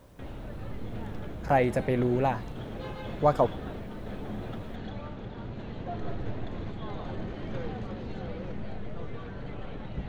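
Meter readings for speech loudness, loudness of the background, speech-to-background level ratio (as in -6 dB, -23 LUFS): -27.0 LUFS, -39.0 LUFS, 12.0 dB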